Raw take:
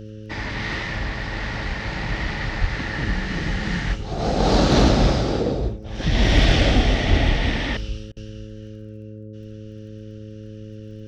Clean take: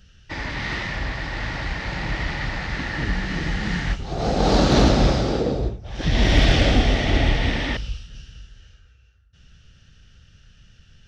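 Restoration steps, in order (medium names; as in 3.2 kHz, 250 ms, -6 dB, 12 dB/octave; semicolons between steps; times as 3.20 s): de-click; de-hum 107.3 Hz, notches 5; 2.60–2.72 s: high-pass 140 Hz 24 dB/octave; 7.09–7.21 s: high-pass 140 Hz 24 dB/octave; interpolate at 8.12 s, 45 ms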